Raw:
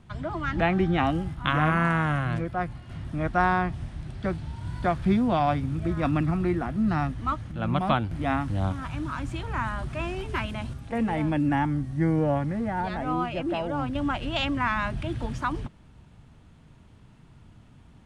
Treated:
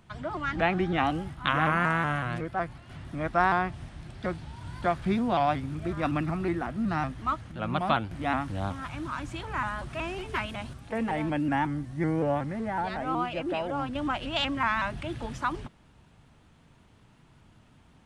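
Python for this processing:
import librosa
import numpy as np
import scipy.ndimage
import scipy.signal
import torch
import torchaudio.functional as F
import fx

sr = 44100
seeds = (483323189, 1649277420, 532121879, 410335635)

y = fx.low_shelf(x, sr, hz=260.0, db=-8.0)
y = fx.vibrato_shape(y, sr, shape='saw_up', rate_hz=5.4, depth_cents=100.0)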